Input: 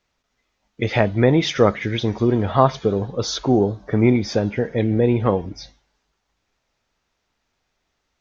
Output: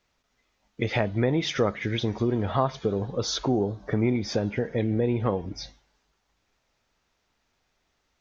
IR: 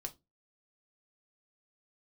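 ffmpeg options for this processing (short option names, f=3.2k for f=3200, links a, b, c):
-af "acompressor=threshold=-27dB:ratio=2"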